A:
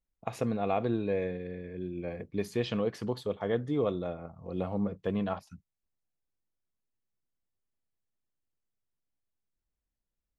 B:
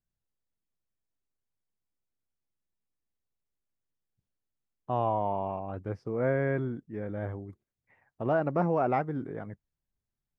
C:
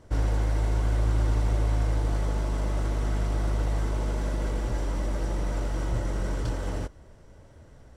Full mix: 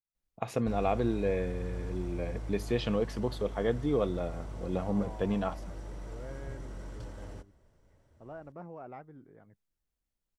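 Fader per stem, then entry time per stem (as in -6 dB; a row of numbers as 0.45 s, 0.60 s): +0.5 dB, -18.5 dB, -14.0 dB; 0.15 s, 0.00 s, 0.55 s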